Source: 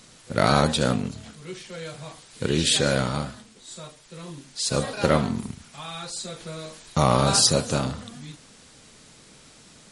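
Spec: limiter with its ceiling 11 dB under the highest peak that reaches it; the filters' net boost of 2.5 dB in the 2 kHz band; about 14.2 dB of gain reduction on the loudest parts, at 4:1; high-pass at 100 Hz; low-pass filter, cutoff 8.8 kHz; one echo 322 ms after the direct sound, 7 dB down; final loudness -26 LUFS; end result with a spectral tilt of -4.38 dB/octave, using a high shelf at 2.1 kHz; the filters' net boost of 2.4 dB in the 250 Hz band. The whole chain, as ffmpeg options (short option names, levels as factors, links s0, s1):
-af "highpass=100,lowpass=8800,equalizer=f=250:t=o:g=3.5,equalizer=f=2000:t=o:g=7.5,highshelf=f=2100:g=-7,acompressor=threshold=0.0282:ratio=4,alimiter=limit=0.0631:level=0:latency=1,aecho=1:1:322:0.447,volume=3.55"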